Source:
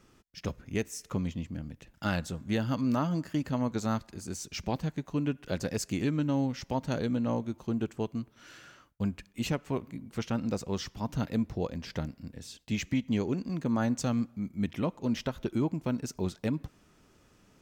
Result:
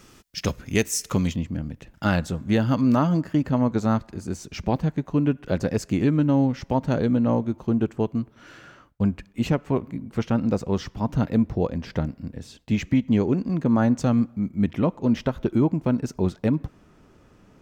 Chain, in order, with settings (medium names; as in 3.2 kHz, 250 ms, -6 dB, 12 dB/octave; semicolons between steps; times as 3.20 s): treble shelf 2.5 kHz +6.5 dB, from 1.36 s -6.5 dB, from 3.17 s -12 dB; trim +9 dB